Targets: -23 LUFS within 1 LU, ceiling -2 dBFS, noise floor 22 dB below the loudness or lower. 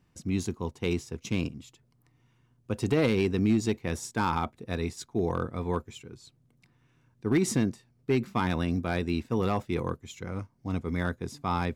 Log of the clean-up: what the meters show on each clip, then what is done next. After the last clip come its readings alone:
clipped 0.3%; flat tops at -17.0 dBFS; loudness -30.0 LUFS; peak -17.0 dBFS; loudness target -23.0 LUFS
-> clip repair -17 dBFS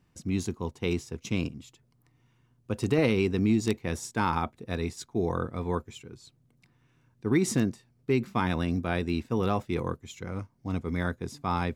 clipped 0.0%; loudness -30.0 LUFS; peak -10.5 dBFS; loudness target -23.0 LUFS
-> gain +7 dB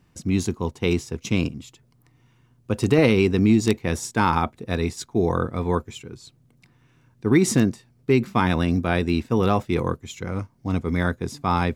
loudness -23.0 LUFS; peak -3.5 dBFS; noise floor -61 dBFS

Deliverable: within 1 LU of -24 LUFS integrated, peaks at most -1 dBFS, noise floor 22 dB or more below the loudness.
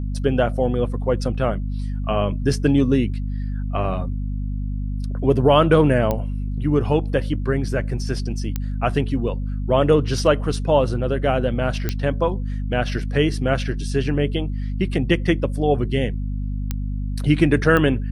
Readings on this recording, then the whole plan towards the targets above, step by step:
clicks 5; hum 50 Hz; harmonics up to 250 Hz; hum level -22 dBFS; loudness -21.5 LUFS; peak -2.5 dBFS; loudness target -24.0 LUFS
-> de-click; notches 50/100/150/200/250 Hz; gain -2.5 dB

